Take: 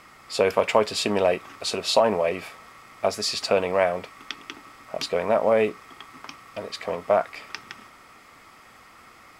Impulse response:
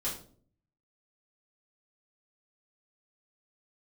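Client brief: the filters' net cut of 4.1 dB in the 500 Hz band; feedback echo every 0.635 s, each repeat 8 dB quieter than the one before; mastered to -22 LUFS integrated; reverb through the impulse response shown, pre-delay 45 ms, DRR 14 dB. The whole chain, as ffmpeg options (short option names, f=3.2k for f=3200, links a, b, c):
-filter_complex "[0:a]equalizer=f=500:t=o:g=-5,aecho=1:1:635|1270|1905|2540|3175:0.398|0.159|0.0637|0.0255|0.0102,asplit=2[a][b];[1:a]atrim=start_sample=2205,adelay=45[c];[b][c]afir=irnorm=-1:irlink=0,volume=-17.5dB[d];[a][d]amix=inputs=2:normalize=0,volume=5dB"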